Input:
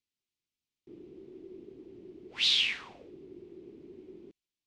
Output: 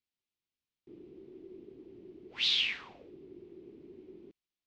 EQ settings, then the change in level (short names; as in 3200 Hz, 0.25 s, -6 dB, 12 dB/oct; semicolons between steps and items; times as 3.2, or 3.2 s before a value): LPF 5200 Hz 12 dB/oct; -2.0 dB